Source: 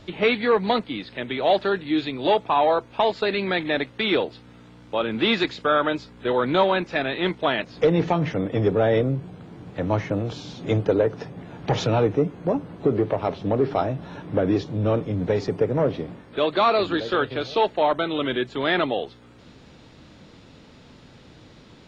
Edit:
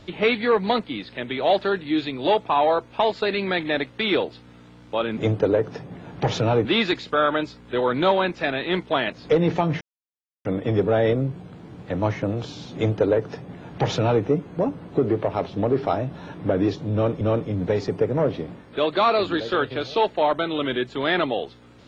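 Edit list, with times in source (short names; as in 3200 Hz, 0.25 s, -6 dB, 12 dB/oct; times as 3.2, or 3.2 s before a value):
8.33 insert silence 0.64 s
10.63–12.11 copy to 5.17
14.81–15.09 loop, 2 plays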